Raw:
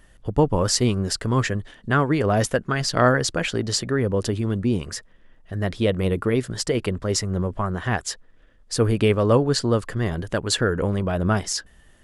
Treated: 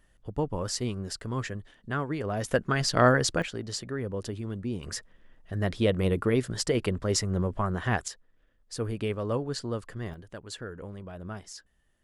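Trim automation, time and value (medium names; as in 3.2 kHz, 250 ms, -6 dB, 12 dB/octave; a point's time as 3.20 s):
-11 dB
from 2.48 s -3 dB
from 3.42 s -11 dB
from 4.83 s -3.5 dB
from 8.08 s -12 dB
from 10.14 s -18 dB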